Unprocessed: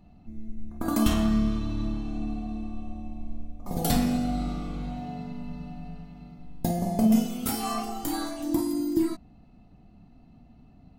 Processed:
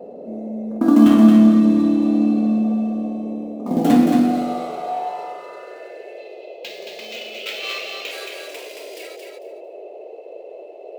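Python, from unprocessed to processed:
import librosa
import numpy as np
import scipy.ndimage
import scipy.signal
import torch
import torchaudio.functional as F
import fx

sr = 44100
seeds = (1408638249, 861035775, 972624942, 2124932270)

p1 = scipy.signal.medfilt(x, 9)
p2 = fx.graphic_eq_15(p1, sr, hz=(250, 4000, 10000), db=(8, 8, -12), at=(6.18, 8.11))
p3 = fx.rider(p2, sr, range_db=3, speed_s=0.5)
p4 = p2 + (p3 * librosa.db_to_amplitude(0.0))
p5 = fx.filter_sweep_highpass(p4, sr, from_hz=260.0, to_hz=2500.0, start_s=3.85, end_s=6.17, q=4.2)
p6 = p5 + fx.echo_feedback(p5, sr, ms=224, feedback_pct=18, wet_db=-4.5, dry=0)
y = fx.dmg_noise_band(p6, sr, seeds[0], low_hz=370.0, high_hz=670.0, level_db=-37.0)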